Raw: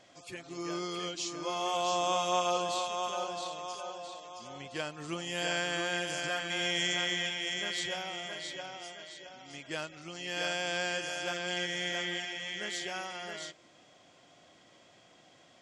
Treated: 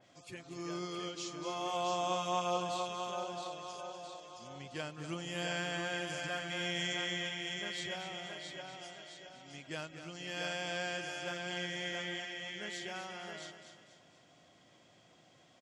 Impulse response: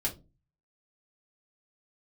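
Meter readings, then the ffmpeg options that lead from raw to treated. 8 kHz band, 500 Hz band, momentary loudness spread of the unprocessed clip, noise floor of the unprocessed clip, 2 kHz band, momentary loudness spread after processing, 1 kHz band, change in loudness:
-7.0 dB, -4.0 dB, 14 LU, -61 dBFS, -5.0 dB, 14 LU, -4.0 dB, -5.0 dB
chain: -filter_complex "[0:a]equalizer=f=130:t=o:w=1.6:g=6,asplit=2[s0][s1];[s1]aecho=0:1:242|484|726|968|1210:0.299|0.131|0.0578|0.0254|0.0112[s2];[s0][s2]amix=inputs=2:normalize=0,adynamicequalizer=threshold=0.00631:dfrequency=3400:dqfactor=0.7:tfrequency=3400:tqfactor=0.7:attack=5:release=100:ratio=0.375:range=1.5:mode=cutabove:tftype=highshelf,volume=0.562"

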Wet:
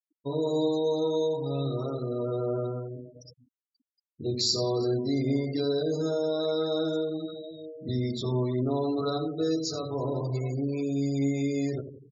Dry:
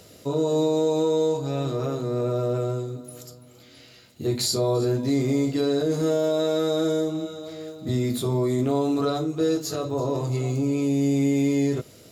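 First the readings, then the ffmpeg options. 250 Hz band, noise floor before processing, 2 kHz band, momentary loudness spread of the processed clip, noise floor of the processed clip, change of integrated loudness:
-5.5 dB, -50 dBFS, -7.0 dB, 8 LU, under -85 dBFS, -4.5 dB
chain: -filter_complex "[0:a]highshelf=f=8000:t=q:w=3:g=-14,asplit=2[s0][s1];[s1]adelay=87,lowpass=f=5000:p=1,volume=0.355,asplit=2[s2][s3];[s3]adelay=87,lowpass=f=5000:p=1,volume=0.53,asplit=2[s4][s5];[s5]adelay=87,lowpass=f=5000:p=1,volume=0.53,asplit=2[s6][s7];[s7]adelay=87,lowpass=f=5000:p=1,volume=0.53,asplit=2[s8][s9];[s9]adelay=87,lowpass=f=5000:p=1,volume=0.53,asplit=2[s10][s11];[s11]adelay=87,lowpass=f=5000:p=1,volume=0.53[s12];[s0][s2][s4][s6][s8][s10][s12]amix=inputs=7:normalize=0,afftfilt=real='re*gte(hypot(re,im),0.0282)':imag='im*gte(hypot(re,im),0.0282)':win_size=1024:overlap=0.75,volume=0.531"

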